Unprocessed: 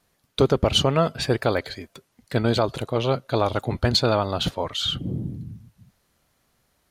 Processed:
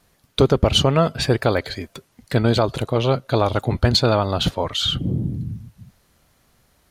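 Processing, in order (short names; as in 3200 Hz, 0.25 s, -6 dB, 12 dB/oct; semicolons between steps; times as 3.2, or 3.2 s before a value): low shelf 140 Hz +4.5 dB; in parallel at -1 dB: compressor, threshold -30 dBFS, peak gain reduction 16.5 dB; on the sum: gain +1 dB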